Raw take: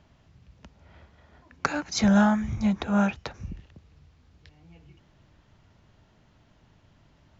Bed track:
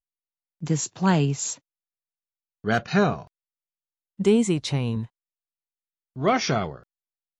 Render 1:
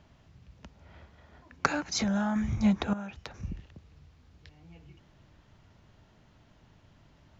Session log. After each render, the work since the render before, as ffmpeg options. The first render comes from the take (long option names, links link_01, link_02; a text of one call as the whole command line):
ffmpeg -i in.wav -filter_complex "[0:a]asettb=1/sr,asplit=3[link_01][link_02][link_03];[link_01]atrim=end=1.734[link_04];[link_02]atrim=start=1.73:end=2.36,asetpts=PTS-STARTPTS,afade=type=in:duration=0.004:curve=qsin,afade=type=out:start_time=0.626:duration=0.004:curve=qsin,acompressor=threshold=-25dB:ratio=12:attack=3.2:release=140:knee=1:detection=peak[link_05];[link_03]atrim=start=2.356[link_06];[link_04][link_05]acrossfade=duration=0.004:curve1=hsin:curve2=qsin[link_07];[link_07][link_06]acrossfade=duration=0.004:curve1=qsin:curve2=hsin,asettb=1/sr,asplit=3[link_08][link_09][link_10];[link_08]atrim=end=2.934[link_11];[link_09]atrim=start=2.93:end=3.43,asetpts=PTS-STARTPTS,afade=type=in:duration=0.004:curve=qsin,afade=type=out:start_time=0.496:duration=0.004:curve=qsin,acompressor=threshold=-39dB:ratio=4:attack=3.2:release=140:knee=1:detection=peak[link_12];[link_10]atrim=start=3.426[link_13];[link_11][link_12]acrossfade=duration=0.004:curve1=hsin:curve2=qsin[link_14];[link_14][link_13]acrossfade=duration=0.004:curve1=qsin:curve2=hsin" out.wav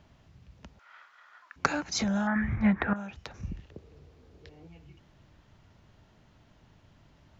ffmpeg -i in.wav -filter_complex "[0:a]asettb=1/sr,asplit=3[link_01][link_02][link_03];[link_01]atrim=end=0.794[link_04];[link_02]atrim=start=0.79:end=1.56,asetpts=PTS-STARTPTS,afade=type=in:duration=0.004:curve=qsin,afade=type=out:start_time=0.766:duration=0.004:curve=qsin,highpass=frequency=1300:width_type=q:width=3.6[link_05];[link_03]atrim=start=1.556[link_06];[link_04][link_05]acrossfade=duration=0.004:curve1=hsin:curve2=qsin[link_07];[link_07][link_06]acrossfade=duration=0.004:curve1=qsin:curve2=hsin,asettb=1/sr,asplit=3[link_08][link_09][link_10];[link_08]atrim=end=2.274[link_11];[link_09]atrim=start=2.27:end=2.96,asetpts=PTS-STARTPTS,afade=type=in:duration=0.004:curve=qsin,afade=type=out:start_time=0.686:duration=0.004:curve=qsin,lowpass=frequency=1800:width_type=q:width=5[link_12];[link_10]atrim=start=2.956[link_13];[link_11][link_12]acrossfade=duration=0.004:curve1=hsin:curve2=qsin[link_14];[link_14][link_13]acrossfade=duration=0.004:curve1=qsin:curve2=hsin,asettb=1/sr,asplit=3[link_15][link_16][link_17];[link_15]atrim=end=3.704[link_18];[link_16]atrim=start=3.7:end=4.68,asetpts=PTS-STARTPTS,afade=type=in:duration=0.004:curve=qsin,afade=type=out:start_time=0.976:duration=0.004:curve=qsin,equalizer=frequency=430:width_type=o:width=0.99:gain=15[link_19];[link_17]atrim=start=4.676[link_20];[link_18][link_19]acrossfade=duration=0.004:curve1=hsin:curve2=qsin[link_21];[link_21][link_20]acrossfade=duration=0.004:curve1=qsin:curve2=hsin" out.wav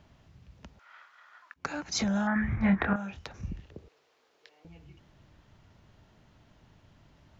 ffmpeg -i in.wav -filter_complex "[0:a]asettb=1/sr,asplit=3[link_01][link_02][link_03];[link_01]atrim=end=2.594[link_04];[link_02]atrim=start=2.59:end=3.28,asetpts=PTS-STARTPTS,afade=type=in:duration=0.004:curve=qsin,afade=type=out:start_time=0.686:duration=0.004:curve=qsin,asplit=2[link_05][link_06];[link_06]adelay=26,volume=-5.5dB[link_07];[link_05][link_07]amix=inputs=2:normalize=0,atrim=end_sample=30429[link_08];[link_03]atrim=start=3.276[link_09];[link_04][link_08]acrossfade=duration=0.004:curve1=hsin:curve2=qsin[link_10];[link_10][link_09]acrossfade=duration=0.004:curve1=qsin:curve2=hsin,asettb=1/sr,asplit=3[link_11][link_12][link_13];[link_11]atrim=end=3.884[link_14];[link_12]atrim=start=3.88:end=4.65,asetpts=PTS-STARTPTS,afade=type=in:duration=0.004:curve=qsin,afade=type=out:start_time=0.766:duration=0.004:curve=qsin,highpass=790[link_15];[link_13]atrim=start=4.646[link_16];[link_14][link_15]acrossfade=duration=0.004:curve1=hsin:curve2=qsin[link_17];[link_17][link_16]acrossfade=duration=0.004:curve1=qsin:curve2=hsin,asplit=2[link_18][link_19];[link_18]atrim=end=1.54,asetpts=PTS-STARTPTS,afade=type=out:start_time=1.536:duration=0.004:curve=hsin:silence=0.1[link_20];[link_19]atrim=start=1.54,asetpts=PTS-STARTPTS,afade=type=in:duration=0.41:silence=0.1[link_21];[link_20][link_21]concat=n=2:v=0:a=1" out.wav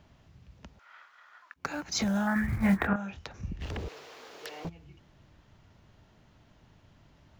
ffmpeg -i in.wav -filter_complex "[0:a]asplit=3[link_01][link_02][link_03];[link_01]afade=type=out:start_time=1.55:duration=0.02[link_04];[link_02]acrusher=bits=7:mode=log:mix=0:aa=0.000001,afade=type=in:start_time=1.55:duration=0.02,afade=type=out:start_time=2.86:duration=0.02[link_05];[link_03]afade=type=in:start_time=2.86:duration=0.02[link_06];[link_04][link_05][link_06]amix=inputs=3:normalize=0,asplit=3[link_07][link_08][link_09];[link_07]afade=type=out:start_time=3.6:duration=0.02[link_10];[link_08]aeval=exprs='0.0282*sin(PI/2*6.31*val(0)/0.0282)':channel_layout=same,afade=type=in:start_time=3.6:duration=0.02,afade=type=out:start_time=4.68:duration=0.02[link_11];[link_09]afade=type=in:start_time=4.68:duration=0.02[link_12];[link_10][link_11][link_12]amix=inputs=3:normalize=0" out.wav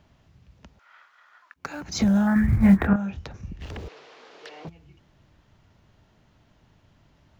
ffmpeg -i in.wav -filter_complex "[0:a]asettb=1/sr,asplit=3[link_01][link_02][link_03];[link_01]atrim=end=1.814[link_04];[link_02]atrim=start=1.81:end=3.37,asetpts=PTS-STARTPTS,afade=type=in:duration=0.004:curve=qsin,afade=type=out:start_time=1.556:duration=0.004:curve=qsin,lowshelf=frequency=410:gain=11.5[link_05];[link_03]atrim=start=3.366[link_06];[link_04][link_05]acrossfade=duration=0.004:curve1=hsin:curve2=qsin[link_07];[link_07][link_06]acrossfade=duration=0.004:curve1=qsin:curve2=hsin,asettb=1/sr,asplit=3[link_08][link_09][link_10];[link_08]atrim=end=3.884[link_11];[link_09]atrim=start=3.88:end=4.68,asetpts=PTS-STARTPTS,afade=type=in:duration=0.004:curve=qsin,afade=type=out:start_time=0.796:duration=0.004:curve=qsin,highpass=140,lowpass=5000[link_12];[link_10]atrim=start=4.676[link_13];[link_11][link_12]acrossfade=duration=0.004:curve1=hsin:curve2=qsin[link_14];[link_14][link_13]acrossfade=duration=0.004:curve1=qsin:curve2=hsin" out.wav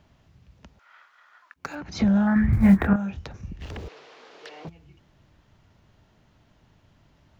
ffmpeg -i in.wav -filter_complex "[0:a]asettb=1/sr,asplit=3[link_01][link_02][link_03];[link_01]atrim=end=1.754[link_04];[link_02]atrim=start=1.75:end=2.53,asetpts=PTS-STARTPTS,afade=type=in:duration=0.004:curve=qsin,afade=type=out:start_time=0.776:duration=0.004:curve=qsin,lowpass=3700[link_05];[link_03]atrim=start=2.526[link_06];[link_04][link_05]acrossfade=duration=0.004:curve1=hsin:curve2=qsin[link_07];[link_07][link_06]acrossfade=duration=0.004:curve1=qsin:curve2=hsin" out.wav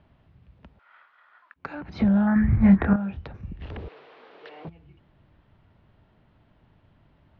ffmpeg -i in.wav -af "lowpass=frequency=4000:width=0.5412,lowpass=frequency=4000:width=1.3066,highshelf=frequency=3000:gain=-8" out.wav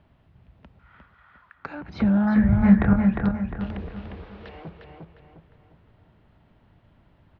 ffmpeg -i in.wav -filter_complex "[0:a]asplit=2[link_01][link_02];[link_02]adelay=354,lowpass=frequency=3600:poles=1,volume=-3.5dB,asplit=2[link_03][link_04];[link_04]adelay=354,lowpass=frequency=3600:poles=1,volume=0.42,asplit=2[link_05][link_06];[link_06]adelay=354,lowpass=frequency=3600:poles=1,volume=0.42,asplit=2[link_07][link_08];[link_08]adelay=354,lowpass=frequency=3600:poles=1,volume=0.42,asplit=2[link_09][link_10];[link_10]adelay=354,lowpass=frequency=3600:poles=1,volume=0.42[link_11];[link_01][link_03][link_05][link_07][link_09][link_11]amix=inputs=6:normalize=0" out.wav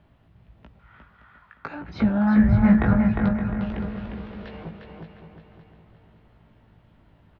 ffmpeg -i in.wav -filter_complex "[0:a]asplit=2[link_01][link_02];[link_02]adelay=18,volume=-5dB[link_03];[link_01][link_03]amix=inputs=2:normalize=0,aecho=1:1:568|1136|1704|2272:0.282|0.0958|0.0326|0.0111" out.wav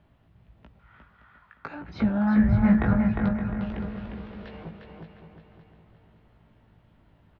ffmpeg -i in.wav -af "volume=-3dB" out.wav